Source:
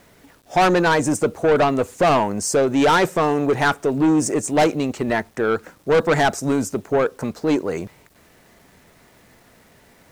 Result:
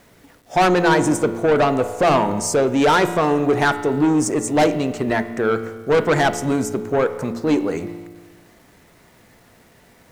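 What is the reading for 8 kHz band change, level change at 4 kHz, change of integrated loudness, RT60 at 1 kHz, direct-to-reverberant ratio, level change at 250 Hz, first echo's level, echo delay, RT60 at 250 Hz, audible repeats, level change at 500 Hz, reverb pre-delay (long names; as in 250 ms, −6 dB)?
0.0 dB, 0.0 dB, +0.5 dB, 1.4 s, 10.0 dB, +1.0 dB, no echo audible, no echo audible, 1.4 s, no echo audible, +0.5 dB, 4 ms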